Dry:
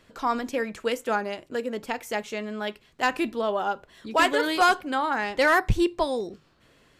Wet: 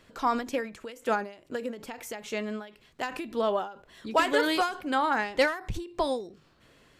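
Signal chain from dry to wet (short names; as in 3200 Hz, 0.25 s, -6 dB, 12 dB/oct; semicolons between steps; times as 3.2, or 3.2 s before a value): short-mantissa float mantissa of 8-bit; ending taper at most 120 dB/s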